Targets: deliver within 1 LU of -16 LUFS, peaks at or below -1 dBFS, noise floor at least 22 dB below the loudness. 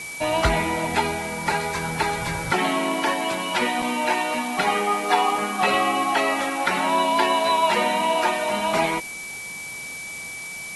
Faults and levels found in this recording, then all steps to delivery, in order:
steady tone 2.3 kHz; tone level -33 dBFS; noise floor -35 dBFS; noise floor target -45 dBFS; loudness -22.5 LUFS; peak level -6.0 dBFS; loudness target -16.0 LUFS
-> band-stop 2.3 kHz, Q 30; noise reduction 10 dB, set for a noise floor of -35 dBFS; trim +6.5 dB; peak limiter -1 dBFS

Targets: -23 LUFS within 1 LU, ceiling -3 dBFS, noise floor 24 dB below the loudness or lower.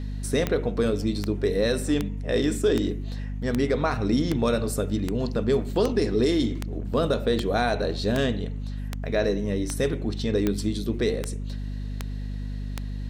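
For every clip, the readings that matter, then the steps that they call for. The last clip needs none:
clicks found 17; hum 50 Hz; highest harmonic 250 Hz; hum level -29 dBFS; loudness -26.0 LUFS; peak level -8.5 dBFS; loudness target -23.0 LUFS
-> de-click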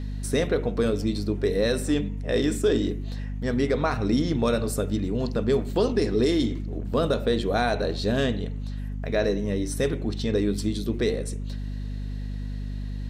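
clicks found 0; hum 50 Hz; highest harmonic 250 Hz; hum level -29 dBFS
-> hum notches 50/100/150/200/250 Hz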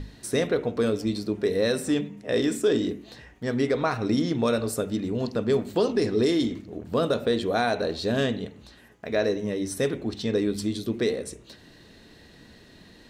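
hum not found; loudness -26.0 LUFS; peak level -11.5 dBFS; loudness target -23.0 LUFS
-> trim +3 dB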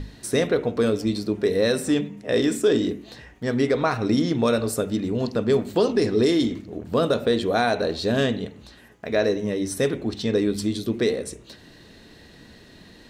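loudness -23.0 LUFS; peak level -8.5 dBFS; noise floor -49 dBFS

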